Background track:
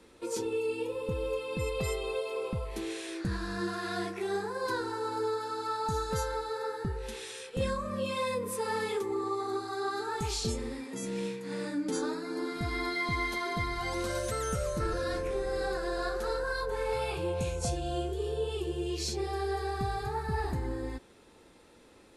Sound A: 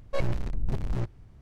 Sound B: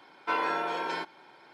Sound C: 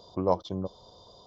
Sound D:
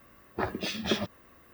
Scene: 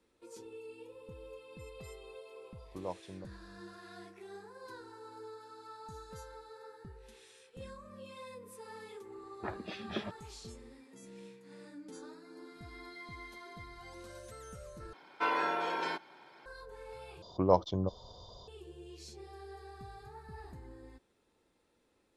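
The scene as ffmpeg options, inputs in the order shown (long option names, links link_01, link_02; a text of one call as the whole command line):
ffmpeg -i bed.wav -i cue0.wav -i cue1.wav -i cue2.wav -i cue3.wav -filter_complex "[3:a]asplit=2[link_01][link_02];[0:a]volume=-16.5dB[link_03];[4:a]lowpass=3200[link_04];[link_02]asubboost=boost=8:cutoff=110[link_05];[link_03]asplit=3[link_06][link_07][link_08];[link_06]atrim=end=14.934[link_09];[2:a]atrim=end=1.53,asetpts=PTS-STARTPTS,volume=-2.5dB[link_10];[link_07]atrim=start=16.456:end=17.224[link_11];[link_05]atrim=end=1.26[link_12];[link_08]atrim=start=18.476[link_13];[link_01]atrim=end=1.26,asetpts=PTS-STARTPTS,volume=-15dB,afade=type=in:duration=0.004:curve=hsin,afade=type=out:start_time=1.256:duration=0.004:curve=hsin,adelay=2580[link_14];[link_04]atrim=end=1.53,asetpts=PTS-STARTPTS,volume=-9dB,afade=type=in:duration=0.004:curve=hsin,afade=type=out:start_time=1.526:duration=0.004:curve=hsin,adelay=9050[link_15];[link_09][link_10]acrossfade=duration=0.004:curve1=hsin:curve2=hsin[link_16];[link_16][link_11]acrossfade=duration=0.004:curve1=hsin:curve2=hsin[link_17];[link_17][link_12]acrossfade=duration=0.004:curve1=hsin:curve2=hsin[link_18];[link_18][link_13]acrossfade=duration=0.004:curve1=hsin:curve2=hsin[link_19];[link_19][link_14][link_15]amix=inputs=3:normalize=0" out.wav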